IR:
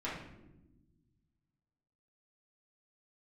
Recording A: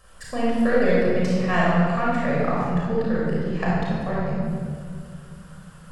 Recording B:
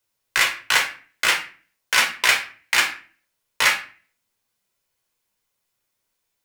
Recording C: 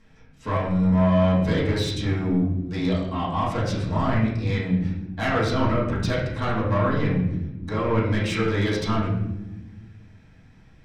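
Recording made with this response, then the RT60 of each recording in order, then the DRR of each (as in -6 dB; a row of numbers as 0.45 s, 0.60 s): C; 2.2 s, 0.40 s, no single decay rate; -6.0 dB, 1.0 dB, -9.0 dB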